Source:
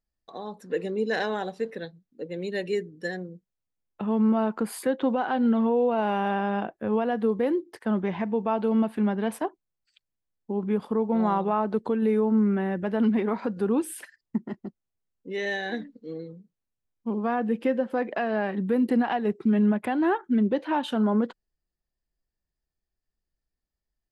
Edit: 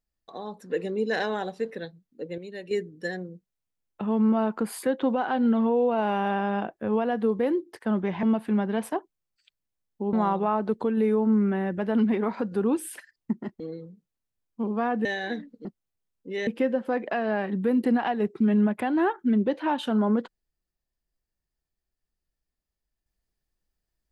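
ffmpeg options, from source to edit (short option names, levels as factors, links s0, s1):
-filter_complex "[0:a]asplit=9[s0][s1][s2][s3][s4][s5][s6][s7][s8];[s0]atrim=end=2.382[s9];[s1]atrim=start=2.378:end=2.712,asetpts=PTS-STARTPTS,volume=0.376[s10];[s2]atrim=start=2.708:end=8.232[s11];[s3]atrim=start=8.718:end=10.622[s12];[s4]atrim=start=11.178:end=14.652[s13];[s5]atrim=start=16.068:end=17.522[s14];[s6]atrim=start=15.468:end=16.072[s15];[s7]atrim=start=14.648:end=15.472[s16];[s8]atrim=start=17.518[s17];[s9][s10]acrossfade=d=0.004:c1=hsin:c2=hsin[s18];[s18][s11]acrossfade=d=0.004:c1=hsin:c2=hsin[s19];[s19][s12]acrossfade=d=0.004:c1=hsin:c2=hsin[s20];[s20][s13]acrossfade=d=0.004:c1=hsin:c2=hsin[s21];[s21][s14]acrossfade=d=0.004:c1=hsin:c2=hsin[s22];[s22][s15]acrossfade=d=0.004:c1=hsin:c2=hsin[s23];[s23][s16]acrossfade=d=0.004:c1=hsin:c2=hsin[s24];[s24][s17]acrossfade=d=0.004:c1=hsin:c2=hsin"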